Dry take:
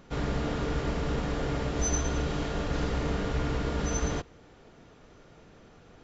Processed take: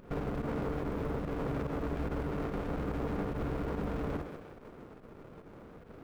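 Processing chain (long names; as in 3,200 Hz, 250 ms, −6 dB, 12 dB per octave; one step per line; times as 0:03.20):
in parallel at −0.5 dB: downward compressor 8 to 1, threshold −36 dBFS, peak gain reduction 13 dB
on the sum: low-pass filter 1,400 Hz 24 dB per octave
mains-hum notches 60/120/180/240/300/360 Hz
log-companded quantiser 8 bits
low-shelf EQ 180 Hz −8.5 dB
on a send: feedback echo with a high-pass in the loop 156 ms, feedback 58%, high-pass 420 Hz, level −10 dB
on the sum: fake sidechain pumping 144 BPM, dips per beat 1, −10 dB, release 84 ms
brickwall limiter −27.5 dBFS, peak gain reduction 7.5 dB
windowed peak hold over 33 samples
level +2.5 dB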